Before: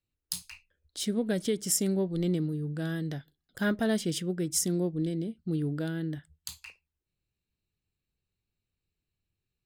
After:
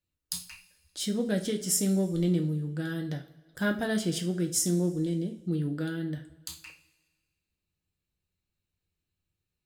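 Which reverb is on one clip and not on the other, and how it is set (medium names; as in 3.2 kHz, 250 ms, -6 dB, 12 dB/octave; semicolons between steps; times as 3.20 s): two-slope reverb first 0.32 s, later 1.5 s, from -18 dB, DRR 3 dB; trim -1 dB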